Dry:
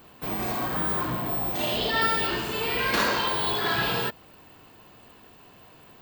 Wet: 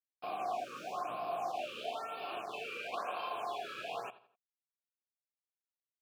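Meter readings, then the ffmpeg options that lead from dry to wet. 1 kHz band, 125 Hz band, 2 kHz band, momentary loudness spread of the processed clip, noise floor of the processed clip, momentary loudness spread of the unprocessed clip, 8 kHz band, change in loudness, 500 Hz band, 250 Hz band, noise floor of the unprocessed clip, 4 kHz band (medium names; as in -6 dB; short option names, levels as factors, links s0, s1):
-8.5 dB, -29.0 dB, -18.0 dB, 4 LU, under -85 dBFS, 5 LU, -16.5 dB, -15.0 dB, -10.0 dB, -21.5 dB, -52 dBFS, -18.5 dB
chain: -filter_complex "[0:a]highpass=f=100:w=0.5412,highpass=f=100:w=1.3066,bandreject=f=50:t=h:w=6,bandreject=f=100:t=h:w=6,bandreject=f=150:t=h:w=6,bandreject=f=200:t=h:w=6,acompressor=threshold=0.0447:ratio=6,acrusher=bits=4:mix=0:aa=0.000001,asplit=3[s0][s1][s2];[s0]bandpass=f=730:t=q:w=8,volume=1[s3];[s1]bandpass=f=1090:t=q:w=8,volume=0.501[s4];[s2]bandpass=f=2440:t=q:w=8,volume=0.355[s5];[s3][s4][s5]amix=inputs=3:normalize=0,asplit=2[s6][s7];[s7]adelay=84,lowpass=f=3700:p=1,volume=0.158,asplit=2[s8][s9];[s9]adelay=84,lowpass=f=3700:p=1,volume=0.39,asplit=2[s10][s11];[s11]adelay=84,lowpass=f=3700:p=1,volume=0.39[s12];[s8][s10][s12]amix=inputs=3:normalize=0[s13];[s6][s13]amix=inputs=2:normalize=0,afftfilt=real='re*(1-between(b*sr/1024,780*pow(7500/780,0.5+0.5*sin(2*PI*1*pts/sr))/1.41,780*pow(7500/780,0.5+0.5*sin(2*PI*1*pts/sr))*1.41))':imag='im*(1-between(b*sr/1024,780*pow(7500/780,0.5+0.5*sin(2*PI*1*pts/sr))/1.41,780*pow(7500/780,0.5+0.5*sin(2*PI*1*pts/sr))*1.41))':win_size=1024:overlap=0.75,volume=1.58"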